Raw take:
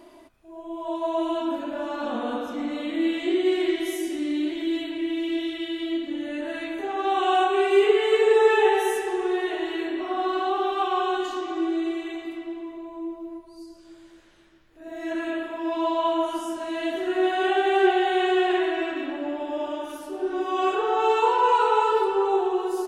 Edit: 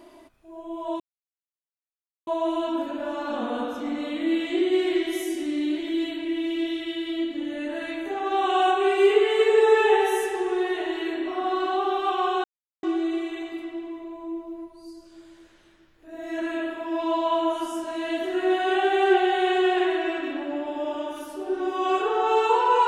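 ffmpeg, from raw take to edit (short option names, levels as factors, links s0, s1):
-filter_complex "[0:a]asplit=4[s0][s1][s2][s3];[s0]atrim=end=1,asetpts=PTS-STARTPTS,afade=t=out:st=0.996:d=0.004:c=hsin,apad=pad_dur=1.27[s4];[s1]atrim=start=1:end=11.17,asetpts=PTS-STARTPTS,afade=t=in:d=0.004:c=hsin,afade=t=out:st=10.166:d=0.004:c=hsin[s5];[s2]atrim=start=11.17:end=11.56,asetpts=PTS-STARTPTS,volume=0[s6];[s3]atrim=start=11.56,asetpts=PTS-STARTPTS,afade=t=in:d=0.004:c=hsin[s7];[s4][s5][s6][s7]concat=n=4:v=0:a=1"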